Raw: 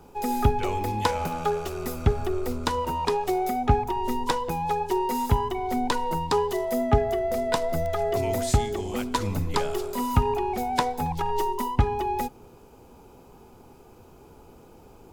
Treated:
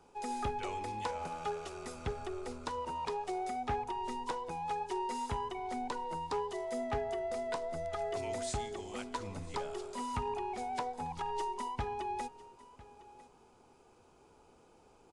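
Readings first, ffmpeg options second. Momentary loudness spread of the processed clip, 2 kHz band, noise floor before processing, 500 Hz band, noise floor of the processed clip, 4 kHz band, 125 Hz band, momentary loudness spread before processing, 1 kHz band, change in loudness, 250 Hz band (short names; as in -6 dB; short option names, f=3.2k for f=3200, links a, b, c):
5 LU, -10.5 dB, -51 dBFS, -12.0 dB, -63 dBFS, -12.0 dB, -18.0 dB, 5 LU, -10.0 dB, -12.0 dB, -14.5 dB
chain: -filter_complex "[0:a]lowshelf=f=350:g=-10,acrossover=split=1100[a][b];[b]alimiter=limit=-22.5dB:level=0:latency=1:release=446[c];[a][c]amix=inputs=2:normalize=0,volume=20.5dB,asoftclip=hard,volume=-20.5dB,aecho=1:1:1002:0.112,aresample=22050,aresample=44100,volume=-8dB"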